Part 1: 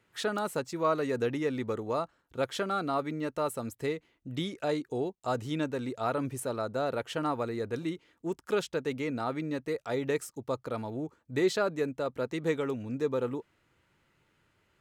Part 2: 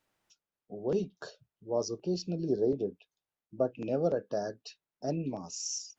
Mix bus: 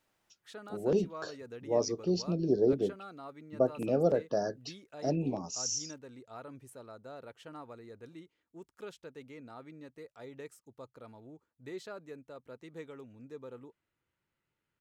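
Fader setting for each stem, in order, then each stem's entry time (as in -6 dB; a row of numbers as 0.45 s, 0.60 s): -16.0 dB, +2.0 dB; 0.30 s, 0.00 s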